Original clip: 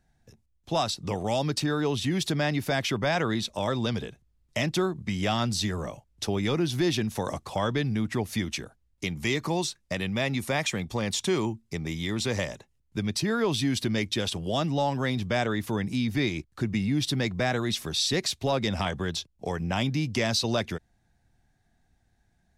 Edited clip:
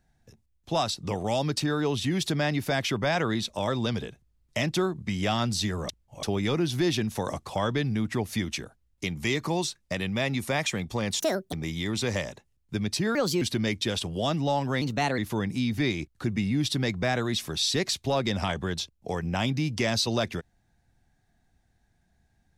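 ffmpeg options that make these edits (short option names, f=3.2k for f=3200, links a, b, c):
-filter_complex "[0:a]asplit=9[a][b][c][d][e][f][g][h][i];[a]atrim=end=5.892[j];[b]atrim=start=5.888:end=6.232,asetpts=PTS-STARTPTS,areverse[k];[c]atrim=start=6.228:end=11.204[l];[d]atrim=start=11.2:end=11.76,asetpts=PTS-STARTPTS,asetrate=74970,aresample=44100,atrim=end_sample=14527,asetpts=PTS-STARTPTS[m];[e]atrim=start=11.756:end=13.384[n];[f]atrim=start=13.38:end=13.72,asetpts=PTS-STARTPTS,asetrate=56448,aresample=44100,atrim=end_sample=11714,asetpts=PTS-STARTPTS[o];[g]atrim=start=13.716:end=15.124[p];[h]atrim=start=15.12:end=15.55,asetpts=PTS-STARTPTS,asetrate=52038,aresample=44100,atrim=end_sample=16070,asetpts=PTS-STARTPTS[q];[i]atrim=start=15.546[r];[j][k]acrossfade=d=0.004:c1=hsin:c2=hsin[s];[s][l]acrossfade=d=0.004:c1=hsin:c2=hsin[t];[t][m]acrossfade=d=0.004:c1=hsin:c2=hsin[u];[u][n]acrossfade=d=0.004:c1=hsin:c2=hsin[v];[v][o]acrossfade=d=0.004:c1=hsin:c2=hsin[w];[w][p]acrossfade=d=0.004:c1=hsin:c2=hsin[x];[x][q]acrossfade=d=0.004:c1=hsin:c2=hsin[y];[y][r]acrossfade=d=0.004:c1=hsin:c2=hsin"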